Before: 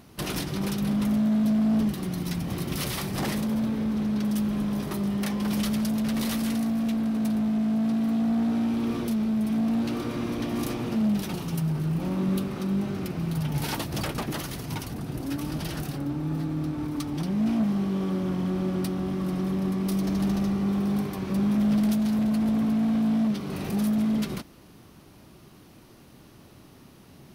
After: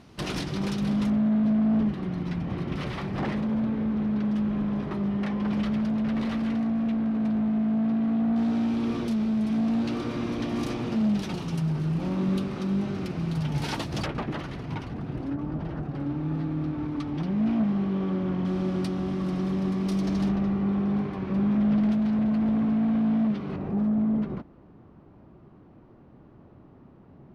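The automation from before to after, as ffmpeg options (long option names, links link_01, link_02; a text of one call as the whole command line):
ffmpeg -i in.wav -af "asetnsamples=nb_out_samples=441:pad=0,asendcmd='1.1 lowpass f 2300;8.36 lowpass f 6000;14.06 lowpass f 2500;15.3 lowpass f 1200;15.95 lowpass f 2900;18.45 lowpass f 6000;20.29 lowpass f 2400;23.56 lowpass f 1100',lowpass=6000" out.wav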